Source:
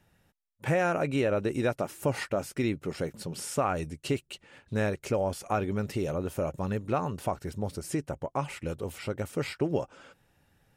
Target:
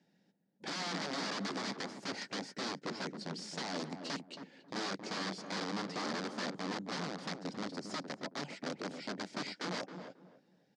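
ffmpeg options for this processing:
-filter_complex "[0:a]equalizer=f=1200:t=o:w=0.49:g=-14,aeval=exprs='(mod(26.6*val(0)+1,2)-1)/26.6':c=same,highpass=f=180:w=0.5412,highpass=f=180:w=1.3066,equalizer=f=190:t=q:w=4:g=9,equalizer=f=280:t=q:w=4:g=6,equalizer=f=2700:t=q:w=4:g=-6,equalizer=f=4700:t=q:w=4:g=6,lowpass=f=6200:w=0.5412,lowpass=f=6200:w=1.3066,asplit=2[s0][s1];[s1]adelay=271,lowpass=f=850:p=1,volume=0.501,asplit=2[s2][s3];[s3]adelay=271,lowpass=f=850:p=1,volume=0.26,asplit=2[s4][s5];[s5]adelay=271,lowpass=f=850:p=1,volume=0.26[s6];[s2][s4][s6]amix=inputs=3:normalize=0[s7];[s0][s7]amix=inputs=2:normalize=0,volume=0.562"

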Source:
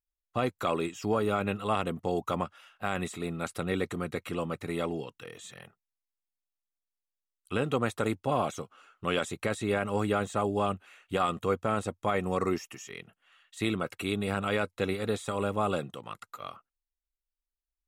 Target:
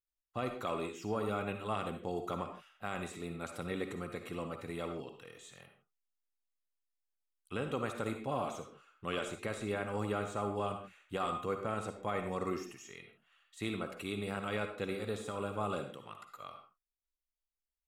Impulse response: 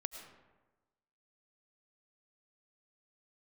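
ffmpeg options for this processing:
-filter_complex "[1:a]atrim=start_sample=2205,afade=t=out:st=0.37:d=0.01,atrim=end_sample=16758,asetrate=83790,aresample=44100[s0];[0:a][s0]afir=irnorm=-1:irlink=0"

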